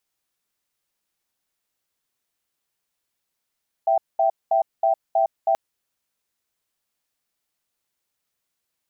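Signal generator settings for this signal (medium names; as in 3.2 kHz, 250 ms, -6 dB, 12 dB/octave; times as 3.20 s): cadence 663 Hz, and 779 Hz, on 0.11 s, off 0.21 s, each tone -18.5 dBFS 1.68 s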